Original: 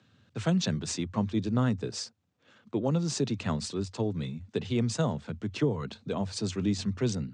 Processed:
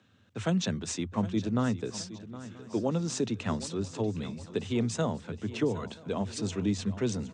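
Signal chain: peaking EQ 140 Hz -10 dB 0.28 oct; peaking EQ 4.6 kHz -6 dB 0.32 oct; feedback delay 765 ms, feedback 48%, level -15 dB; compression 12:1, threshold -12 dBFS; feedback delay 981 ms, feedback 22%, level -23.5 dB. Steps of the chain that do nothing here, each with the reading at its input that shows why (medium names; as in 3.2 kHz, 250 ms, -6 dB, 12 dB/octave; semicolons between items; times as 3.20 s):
compression, threshold -12 dBFS: peak at its input -14.5 dBFS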